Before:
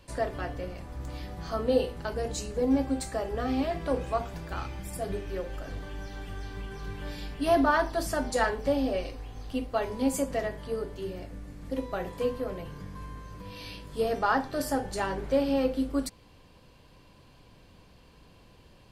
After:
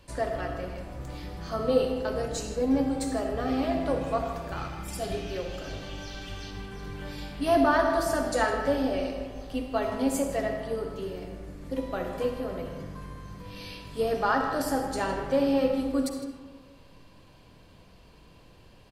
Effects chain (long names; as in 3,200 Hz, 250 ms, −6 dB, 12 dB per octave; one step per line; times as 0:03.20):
0:04.88–0:06.51: flat-topped bell 4,100 Hz +8.5 dB
single-tap delay 158 ms −15.5 dB
convolution reverb RT60 1.5 s, pre-delay 25 ms, DRR 4.5 dB